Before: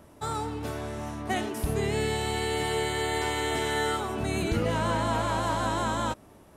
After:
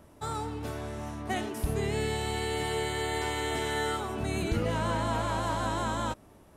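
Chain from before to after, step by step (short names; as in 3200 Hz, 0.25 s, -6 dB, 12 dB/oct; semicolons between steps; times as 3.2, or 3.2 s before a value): low shelf 69 Hz +5 dB; gain -3 dB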